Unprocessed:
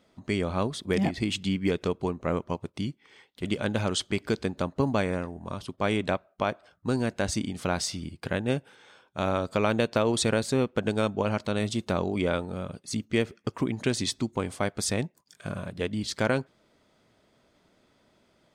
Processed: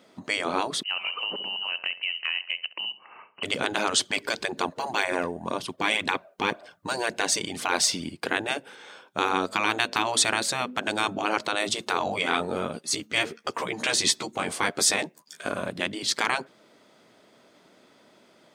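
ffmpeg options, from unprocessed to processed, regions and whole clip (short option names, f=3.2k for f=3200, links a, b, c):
-filter_complex "[0:a]asettb=1/sr,asplit=3[a][b][c];[a]atrim=end=0.834[d];[b]atrim=start=0.83:end=3.43,asetpts=PTS-STARTPTS,afade=t=in:d=0.004:c=qsin,afade=t=out:st=2.596:d=0.004:c=qsin,lowpass=f=2.6k:t=q:w=0.5098,lowpass=f=2.6k:t=q:w=0.6013,lowpass=f=2.6k:t=q:w=0.9,lowpass=f=2.6k:t=q:w=2.563,afreqshift=-3100,acompressor=threshold=-37dB:ratio=2.5:attack=3.2:release=140:knee=1:detection=peak,asplit=2[e][f];[f]adelay=68,lowpass=f=1.1k:p=1,volume=-11dB,asplit=2[g][h];[h]adelay=68,lowpass=f=1.1k:p=1,volume=0.52,asplit=2[i][j];[j]adelay=68,lowpass=f=1.1k:p=1,volume=0.52,asplit=2[k][l];[l]adelay=68,lowpass=f=1.1k:p=1,volume=0.52,asplit=2[m][n];[n]adelay=68,lowpass=f=1.1k:p=1,volume=0.52,asplit=2[o][p];[p]adelay=68,lowpass=f=1.1k:p=1,volume=0.52[q];[e][g][i][k][m][o][q]amix=inputs=7:normalize=0,atrim=end_sample=114660[r];[c]atrim=start=3.426[s];[d][r]acrossfade=d=0.004:c1=hsin:c2=qsin[t];[t][s]acrossfade=d=0.004:c1=qsin:c2=hsin,asettb=1/sr,asplit=3[u][v][w];[u]atrim=end=3.994[x];[v]atrim=start=3.99:end=8.09,asetpts=PTS-STARTPTS,afade=t=in:d=0.004:c=qsin,afade=t=out:st=4.096:d=0.004:c=qsin,bandreject=f=1.3k:w=9.6,aphaser=in_gain=1:out_gain=1:delay=2.3:decay=0.4:speed=1.9:type=triangular[y];[w]atrim=start=8.086[z];[x][y]acrossfade=d=0.004:c1=hsin:c2=qsin[aa];[aa][z]acrossfade=d=0.004:c1=qsin:c2=hsin,asettb=1/sr,asplit=3[ab][ac][ad];[ab]atrim=end=9.334[ae];[ac]atrim=start=9.33:end=11.04,asetpts=PTS-STARTPTS,afade=t=in:d=0.004:c=qsin,afade=t=out:st=1.706:d=0.004:c=qsin,equalizer=f=130:w=1.3:g=-12,bandreject=f=50:t=h:w=6,bandreject=f=100:t=h:w=6,bandreject=f=150:t=h:w=6,bandreject=f=200:t=h:w=6,bandreject=f=250:t=h:w=6[af];[ad]atrim=start=11.036[ag];[ae][af]acrossfade=d=0.004:c1=hsin:c2=qsin[ah];[ah][ag]acrossfade=d=0.004:c1=qsin:c2=hsin,asettb=1/sr,asplit=3[ai][aj][ak];[ai]atrim=end=11.994[al];[aj]atrim=start=11.99:end=15.49,asetpts=PTS-STARTPTS,afade=t=in:d=0.004:c=qsin,afade=t=out:st=3.496:d=0.004:c=qsin,lowshelf=f=80:g=-7.5,asplit=2[am][an];[an]adelay=13,volume=-4.5dB[ao];[am][ao]amix=inputs=2:normalize=0,atrim=end_sample=154350[ap];[ak]atrim=start=15.486[aq];[al][ap]acrossfade=d=0.004:c1=hsin:c2=qsin[ar];[ar][aq]acrossfade=d=0.004:c1=qsin:c2=hsin,afftfilt=real='re*lt(hypot(re,im),0.141)':imag='im*lt(hypot(re,im),0.141)':win_size=1024:overlap=0.75,highpass=210,volume=8.5dB"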